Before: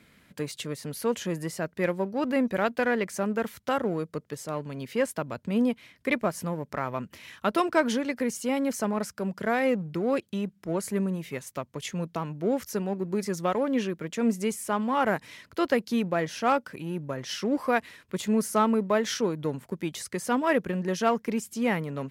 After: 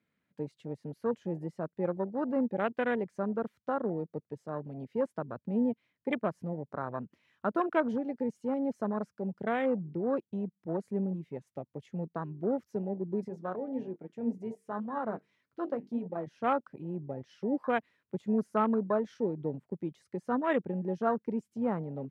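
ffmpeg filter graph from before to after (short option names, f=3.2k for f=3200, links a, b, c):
-filter_complex "[0:a]asettb=1/sr,asplit=3[a][b][c];[a]atrim=end=13.284[d];[b]atrim=start=13.28:end=16.27,asetpts=PTS-STARTPTS,afade=t=in:d=0.004:c=qsin,afade=t=out:st=2.986:d=0.004:c=qsin,bandreject=f=50:t=h:w=6,bandreject=f=100:t=h:w=6,bandreject=f=150:t=h:w=6,bandreject=f=200:t=h:w=6,bandreject=f=250:t=h:w=6,bandreject=f=300:t=h:w=6,bandreject=f=350:t=h:w=6,bandreject=f=400:t=h:w=6,bandreject=f=450:t=h:w=6,flanger=delay=6.6:depth=4.8:regen=69:speed=1.8:shape=triangular[e];[c]atrim=start=16.266[f];[d][e]acrossfade=d=0.004:c1=hsin:c2=qsin[g];[g][f]acrossfade=d=0.004:c1=qsin:c2=hsin,aemphasis=mode=reproduction:type=75kf,afwtdn=0.0282,highpass=97,volume=-4dB"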